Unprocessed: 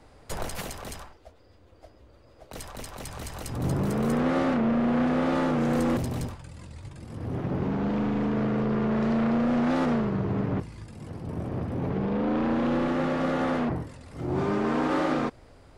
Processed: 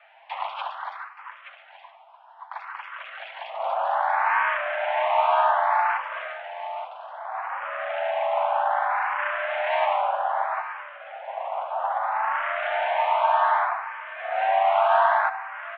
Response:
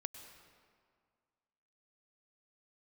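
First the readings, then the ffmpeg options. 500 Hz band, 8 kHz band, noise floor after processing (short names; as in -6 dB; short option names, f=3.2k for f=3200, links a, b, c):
+2.5 dB, n/a, -50 dBFS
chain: -filter_complex "[0:a]highpass=f=310:t=q:w=0.5412,highpass=f=310:t=q:w=1.307,lowpass=f=2.8k:t=q:w=0.5176,lowpass=f=2.8k:t=q:w=0.7071,lowpass=f=2.8k:t=q:w=1.932,afreqshift=370,aecho=1:1:874:0.251,asplit=2[a][b];[1:a]atrim=start_sample=2205,adelay=9[c];[b][c]afir=irnorm=-1:irlink=0,volume=-5.5dB[d];[a][d]amix=inputs=2:normalize=0,aeval=exprs='0.2*(cos(1*acos(clip(val(0)/0.2,-1,1)))-cos(1*PI/2))+0.00251*(cos(2*acos(clip(val(0)/0.2,-1,1)))-cos(2*PI/2))':c=same,asplit=2[e][f];[f]afreqshift=0.63[g];[e][g]amix=inputs=2:normalize=1,volume=8.5dB"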